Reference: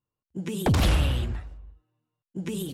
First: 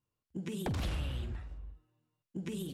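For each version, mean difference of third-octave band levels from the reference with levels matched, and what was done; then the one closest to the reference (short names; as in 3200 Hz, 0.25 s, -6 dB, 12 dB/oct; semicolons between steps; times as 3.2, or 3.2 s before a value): 3.5 dB: bell 810 Hz -2 dB 1.7 oct; on a send: flutter echo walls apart 7.9 m, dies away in 0.21 s; on the sum: compressor 2.5:1, threshold -41 dBFS, peak gain reduction 15.5 dB; high shelf 8100 Hz -5 dB; gain +1 dB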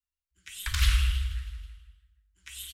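16.0 dB: inverse Chebyshev band-stop 130–760 Hz, stop band 40 dB; rotary speaker horn 1 Hz; on a send: feedback echo 0.161 s, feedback 56%, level -15 dB; on the sum: non-linear reverb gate 0.29 s falling, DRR 6.5 dB; gain +1 dB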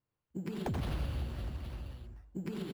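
7.0 dB: sample-and-hold 6×; high shelf 3300 Hz -8.5 dB; on a send: reverse bouncing-ball echo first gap 90 ms, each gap 1.3×, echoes 5; on the sum: compressor 3:1, threshold -37 dBFS, peak gain reduction 16 dB; gain -1 dB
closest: first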